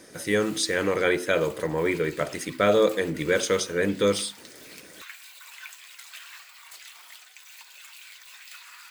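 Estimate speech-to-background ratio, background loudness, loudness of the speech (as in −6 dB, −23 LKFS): 19.0 dB, −44.0 LKFS, −25.0 LKFS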